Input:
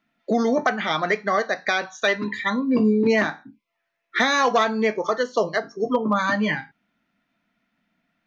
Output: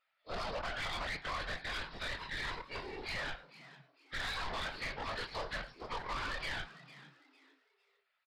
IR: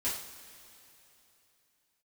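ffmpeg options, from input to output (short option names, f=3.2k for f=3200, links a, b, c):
-filter_complex "[0:a]afftfilt=real='re':imag='-im':win_size=2048:overlap=0.75,highpass=f=710:w=0.5412,highpass=f=710:w=1.3066,highshelf=f=2.4k:g=6.5,acompressor=threshold=-26dB:ratio=16,alimiter=limit=-24dB:level=0:latency=1:release=61,aeval=exprs='0.0631*(cos(1*acos(clip(val(0)/0.0631,-1,1)))-cos(1*PI/2))+0.0178*(cos(6*acos(clip(val(0)/0.0631,-1,1)))-cos(6*PI/2))+0.000708*(cos(7*acos(clip(val(0)/0.0631,-1,1)))-cos(7*PI/2))':c=same,afftfilt=real='hypot(re,im)*cos(2*PI*random(0))':imag='hypot(re,im)*sin(2*PI*random(1))':win_size=512:overlap=0.75,aresample=11025,acrusher=bits=4:mode=log:mix=0:aa=0.000001,aresample=44100,afreqshift=-42,asoftclip=type=tanh:threshold=-36dB,asplit=4[a][b][c][d];[b]adelay=453,afreqshift=130,volume=-17dB[e];[c]adelay=906,afreqshift=260,volume=-27.2dB[f];[d]adelay=1359,afreqshift=390,volume=-37.3dB[g];[a][e][f][g]amix=inputs=4:normalize=0,volume=2.5dB"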